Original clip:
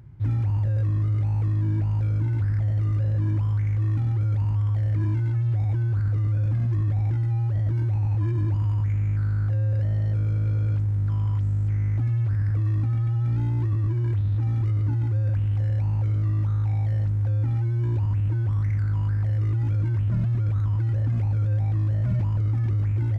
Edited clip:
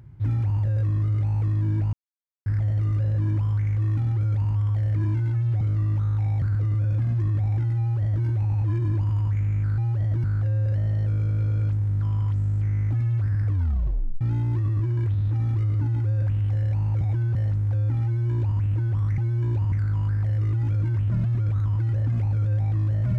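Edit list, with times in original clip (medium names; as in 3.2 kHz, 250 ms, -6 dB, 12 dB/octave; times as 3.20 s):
1.93–2.46 s: mute
5.61–5.95 s: swap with 16.08–16.89 s
7.33–7.79 s: copy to 9.31 s
12.55 s: tape stop 0.73 s
17.59–18.13 s: copy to 18.72 s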